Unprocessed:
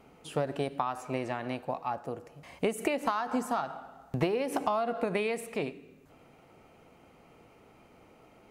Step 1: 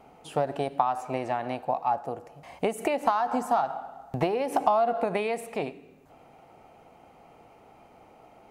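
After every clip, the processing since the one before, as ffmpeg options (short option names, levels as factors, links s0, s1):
-af "equalizer=f=770:t=o:w=0.7:g=10"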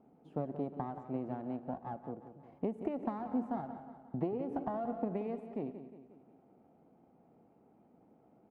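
-af "aeval=exprs='if(lt(val(0),0),0.447*val(0),val(0))':c=same,bandpass=f=230:t=q:w=1.6:csg=0,aecho=1:1:179|358|537|716|895:0.266|0.133|0.0665|0.0333|0.0166"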